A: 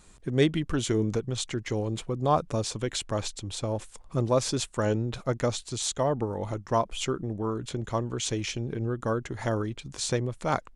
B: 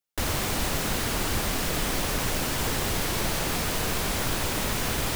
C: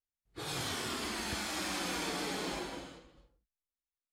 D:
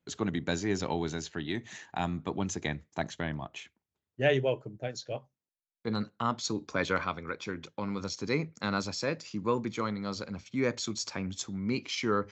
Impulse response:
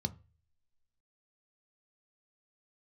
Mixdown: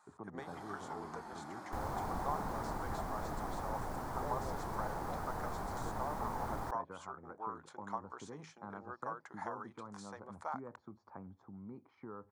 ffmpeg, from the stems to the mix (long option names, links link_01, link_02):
-filter_complex "[0:a]highpass=1100,acompressor=threshold=-39dB:ratio=6,volume=-2.5dB[link_01];[1:a]adelay=1550,volume=-13dB[link_02];[2:a]equalizer=frequency=81:width_type=o:width=1.1:gain=-12,volume=-11dB[link_03];[3:a]lowpass=1500,acompressor=threshold=-36dB:ratio=3,volume=-11.5dB[link_04];[link_01][link_02][link_03][link_04]amix=inputs=4:normalize=0,firequalizer=gain_entry='entry(560,0);entry(810,9);entry(2700,-20);entry(4500,-14)':delay=0.05:min_phase=1"